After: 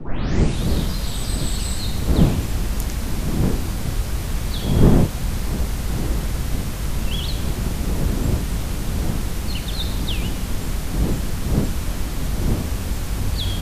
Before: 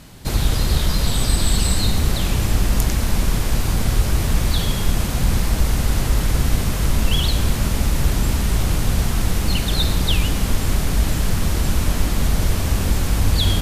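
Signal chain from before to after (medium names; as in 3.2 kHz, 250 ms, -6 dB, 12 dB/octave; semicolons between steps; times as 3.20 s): tape start-up on the opening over 0.70 s; wind noise 200 Hz -18 dBFS; trim -6 dB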